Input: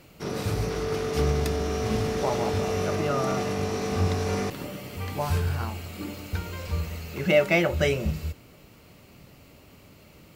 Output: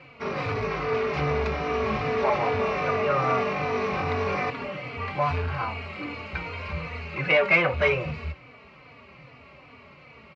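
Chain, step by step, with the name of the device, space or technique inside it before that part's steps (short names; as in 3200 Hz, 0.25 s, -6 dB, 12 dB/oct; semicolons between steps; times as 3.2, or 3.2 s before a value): barber-pole flanger into a guitar amplifier (endless flanger 3.4 ms -2.5 Hz; soft clip -23 dBFS, distortion -14 dB; speaker cabinet 93–3800 Hz, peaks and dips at 100 Hz -9 dB, 190 Hz -9 dB, 330 Hz -10 dB, 1100 Hz +7 dB, 2300 Hz +8 dB, 3400 Hz -7 dB); gain +7.5 dB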